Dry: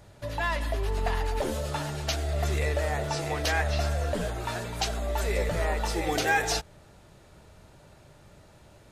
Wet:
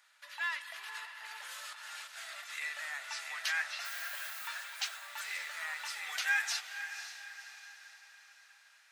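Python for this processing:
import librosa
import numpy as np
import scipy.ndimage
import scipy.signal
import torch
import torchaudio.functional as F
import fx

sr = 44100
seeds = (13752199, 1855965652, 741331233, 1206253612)

y = scipy.signal.sosfilt(scipy.signal.butter(4, 1400.0, 'highpass', fs=sr, output='sos'), x)
y = fx.high_shelf(y, sr, hz=2800.0, db=-7.5)
y = fx.over_compress(y, sr, threshold_db=-48.0, ratio=-1.0, at=(0.62, 2.5))
y = fx.dmg_noise_colour(y, sr, seeds[0], colour='violet', level_db=-47.0, at=(3.84, 4.47), fade=0.02)
y = fx.echo_diffused(y, sr, ms=527, feedback_pct=48, wet_db=-10.0)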